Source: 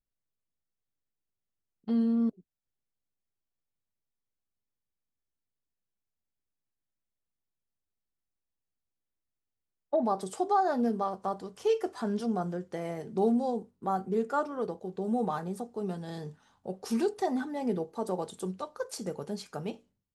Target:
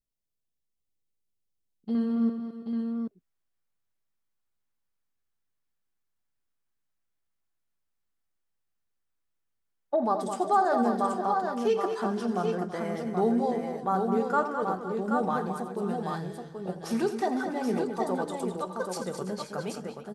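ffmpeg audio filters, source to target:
ffmpeg -i in.wav -af "asetnsamples=nb_out_samples=441:pad=0,asendcmd='1.95 equalizer g 5.5',equalizer=frequency=1400:width_type=o:width=1.4:gain=-8,aecho=1:1:85|212|330|510|529|780:0.237|0.376|0.178|0.141|0.126|0.562" out.wav

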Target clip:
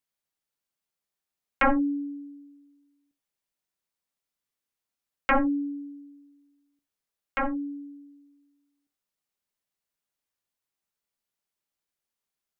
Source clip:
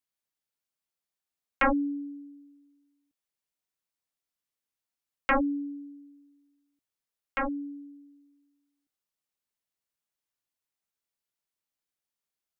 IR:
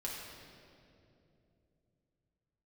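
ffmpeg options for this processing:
-filter_complex "[0:a]asplit=2[link_01][link_02];[1:a]atrim=start_sample=2205,atrim=end_sample=3969,highshelf=frequency=3200:gain=-11[link_03];[link_02][link_03]afir=irnorm=-1:irlink=0,volume=-5.5dB[link_04];[link_01][link_04]amix=inputs=2:normalize=0"

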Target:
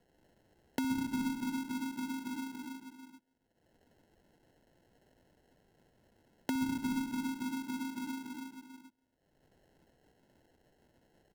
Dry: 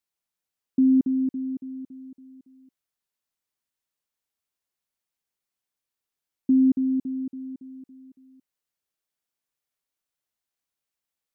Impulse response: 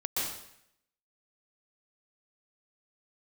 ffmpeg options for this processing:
-filter_complex "[0:a]agate=range=-38dB:threshold=-47dB:ratio=16:detection=peak,aecho=1:1:60|135|228.8|345.9|492.4:0.631|0.398|0.251|0.158|0.1[link_01];[1:a]atrim=start_sample=2205,afade=type=out:start_time=0.34:duration=0.01,atrim=end_sample=15435[link_02];[link_01][link_02]afir=irnorm=-1:irlink=0,asplit=2[link_03][link_04];[link_04]acompressor=mode=upward:threshold=-22dB:ratio=2.5,volume=1.5dB[link_05];[link_03][link_05]amix=inputs=2:normalize=0,acrusher=samples=37:mix=1:aa=0.000001,acrossover=split=130[link_06][link_07];[link_07]acompressor=threshold=-27dB:ratio=6[link_08];[link_06][link_08]amix=inputs=2:normalize=0,volume=-8dB"

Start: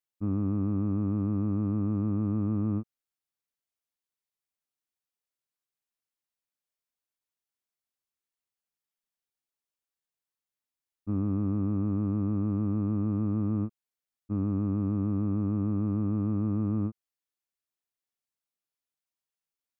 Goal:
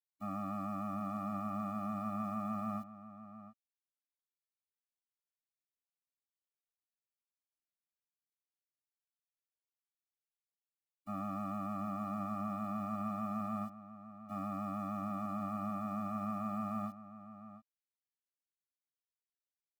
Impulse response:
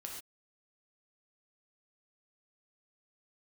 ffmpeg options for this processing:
-filter_complex "[0:a]highpass=690,acrusher=bits=11:mix=0:aa=0.000001,asplit=2[link_01][link_02];[link_02]adelay=699.7,volume=-13dB,highshelf=frequency=4000:gain=-15.7[link_03];[link_01][link_03]amix=inputs=2:normalize=0,afftfilt=real='re*eq(mod(floor(b*sr/1024/280),2),0)':imag='im*eq(mod(floor(b*sr/1024/280),2),0)':win_size=1024:overlap=0.75,volume=11.5dB"

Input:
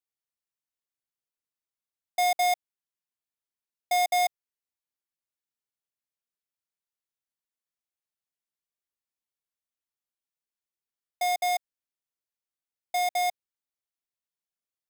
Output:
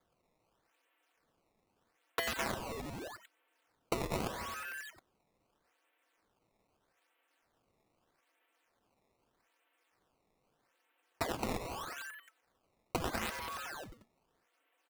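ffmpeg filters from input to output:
ffmpeg -i in.wav -filter_complex "[0:a]aeval=exprs='(mod(63.1*val(0)+1,2)-1)/63.1':channel_layout=same,asetrate=36028,aresample=44100,atempo=1.22405,asplit=2[link_01][link_02];[link_02]asplit=8[link_03][link_04][link_05][link_06][link_07][link_08][link_09][link_10];[link_03]adelay=89,afreqshift=150,volume=-9dB[link_11];[link_04]adelay=178,afreqshift=300,volume=-12.9dB[link_12];[link_05]adelay=267,afreqshift=450,volume=-16.8dB[link_13];[link_06]adelay=356,afreqshift=600,volume=-20.6dB[link_14];[link_07]adelay=445,afreqshift=750,volume=-24.5dB[link_15];[link_08]adelay=534,afreqshift=900,volume=-28.4dB[link_16];[link_09]adelay=623,afreqshift=1050,volume=-32.3dB[link_17];[link_10]adelay=712,afreqshift=1200,volume=-36.1dB[link_18];[link_11][link_12][link_13][link_14][link_15][link_16][link_17][link_18]amix=inputs=8:normalize=0[link_19];[link_01][link_19]amix=inputs=2:normalize=0,aeval=exprs='0.0282*(cos(1*acos(clip(val(0)/0.0282,-1,1)))-cos(1*PI/2))+0.0112*(cos(6*acos(clip(val(0)/0.0282,-1,1)))-cos(6*PI/2))':channel_layout=same,aecho=1:1:4.8:0.9,highpass=frequency=230:width_type=q:width=0.5412,highpass=frequency=230:width_type=q:width=1.307,lowpass=frequency=2900:width_type=q:width=0.5176,lowpass=frequency=2900:width_type=q:width=0.7071,lowpass=frequency=2900:width_type=q:width=1.932,afreqshift=84,acompressor=threshold=-53dB:ratio=5,acrusher=samples=16:mix=1:aa=0.000001:lfo=1:lforange=25.6:lforate=0.8,aeval=exprs='0.00944*(cos(1*acos(clip(val(0)/0.00944,-1,1)))-cos(1*PI/2))+0.00335*(cos(7*acos(clip(val(0)/0.00944,-1,1)))-cos(7*PI/2))':channel_layout=same,volume=17.5dB" out.wav

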